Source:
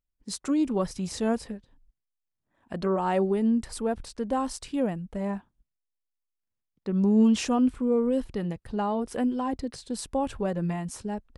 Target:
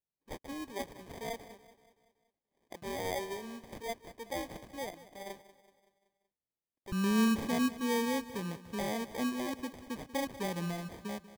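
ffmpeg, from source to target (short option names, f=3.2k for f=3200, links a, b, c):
-af "asetnsamples=n=441:p=0,asendcmd='6.92 highpass f 94',highpass=540,acrusher=samples=32:mix=1:aa=0.000001,aecho=1:1:189|378|567|756|945:0.158|0.0808|0.0412|0.021|0.0107,volume=-7.5dB"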